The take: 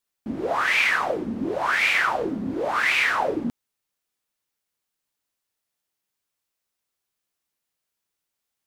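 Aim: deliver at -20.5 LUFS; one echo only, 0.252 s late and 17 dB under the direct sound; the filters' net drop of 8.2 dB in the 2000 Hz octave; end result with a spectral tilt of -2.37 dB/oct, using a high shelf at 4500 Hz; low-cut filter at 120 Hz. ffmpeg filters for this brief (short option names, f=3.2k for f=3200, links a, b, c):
-af "highpass=120,equalizer=f=2k:t=o:g=-8.5,highshelf=f=4.5k:g=-8.5,aecho=1:1:252:0.141,volume=7dB"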